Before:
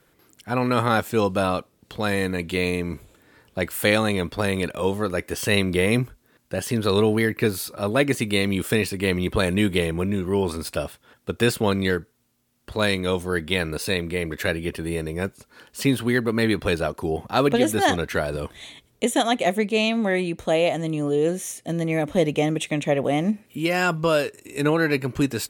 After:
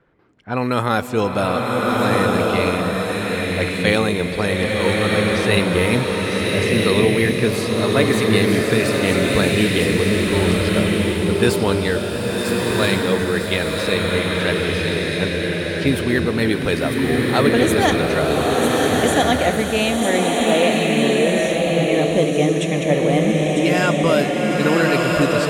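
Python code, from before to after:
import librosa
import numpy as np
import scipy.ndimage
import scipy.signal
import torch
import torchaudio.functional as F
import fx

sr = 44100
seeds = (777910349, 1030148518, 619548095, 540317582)

p1 = fx.env_lowpass(x, sr, base_hz=1800.0, full_db=-17.5)
p2 = p1 + fx.echo_wet_highpass(p1, sr, ms=950, feedback_pct=33, hz=3900.0, wet_db=-4, dry=0)
p3 = fx.rev_bloom(p2, sr, seeds[0], attack_ms=1320, drr_db=-2.5)
y = p3 * 10.0 ** (1.5 / 20.0)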